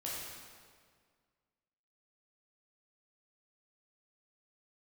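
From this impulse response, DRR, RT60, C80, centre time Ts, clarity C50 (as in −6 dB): −6.5 dB, 1.9 s, 0.5 dB, 111 ms, −2.0 dB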